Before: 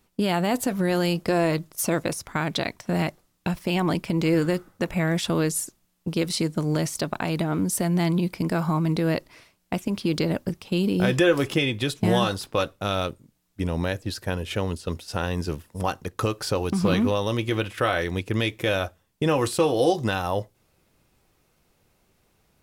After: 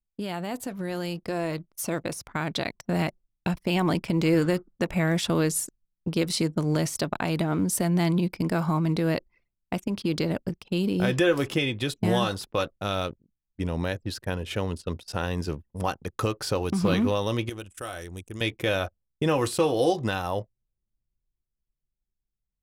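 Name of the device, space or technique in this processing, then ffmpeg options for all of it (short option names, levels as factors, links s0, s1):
voice memo with heavy noise removal: -filter_complex "[0:a]asettb=1/sr,asplit=3[s0][s1][s2];[s0]atrim=end=17.494[s3];[s1]atrim=start=17.49:end=18.41,asetpts=PTS-STARTPTS,afade=t=in:d=0.004:c=qsin,afade=t=out:st=0.916:d=0.004:c=qsin,equalizer=f=125:t=o:w=1:g=-12,equalizer=f=250:t=o:w=1:g=-7,equalizer=f=500:t=o:w=1:g=-9,equalizer=f=1000:t=o:w=1:g=-8,equalizer=f=2000:t=o:w=1:g=-11,equalizer=f=4000:t=o:w=1:g=-10,equalizer=f=8000:t=o:w=1:g=10[s4];[s2]atrim=start=18.406[s5];[s3][s4]acrossfade=d=0.004:c1=hsin:c2=qsin[s6];[s6][s5]acrossfade=d=0.004:c1=qsin:c2=hsin,anlmdn=0.158,dynaudnorm=f=420:g=11:m=2.99,volume=0.355"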